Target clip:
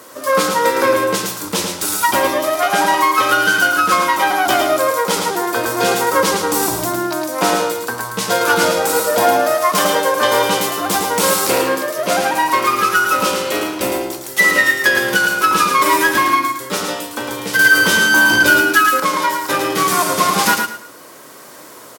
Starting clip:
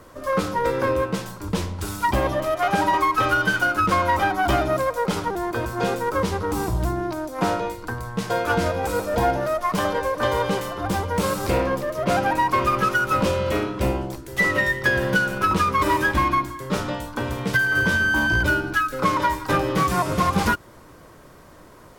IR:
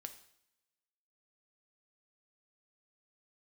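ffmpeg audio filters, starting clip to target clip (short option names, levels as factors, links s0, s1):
-filter_complex "[0:a]highpass=270,highshelf=f=3600:g=12,aecho=1:1:109|218|327:0.562|0.124|0.0272,asettb=1/sr,asplit=3[s0][s1][s2];[s0]atrim=end=17.594[s3];[s1]atrim=start=17.59:end=19,asetpts=PTS-STARTPTS,afade=t=in:d=0.004:c=qsin,afade=t=out:st=1.406:d=0.004:c=qsin,acontrast=69[s4];[s2]atrim=start=18.996[s5];[s3][s4]acrossfade=d=0.004:c1=hsin:c2=qsin[s6];[s6][s5]acrossfade=d=0.004:c1=qsin:c2=hsin,asplit=2[s7][s8];[1:a]atrim=start_sample=2205[s9];[s8][s9]afir=irnorm=-1:irlink=0,volume=2.37[s10];[s7][s10]amix=inputs=2:normalize=0,dynaudnorm=f=210:g=9:m=3.76,volume=0.891"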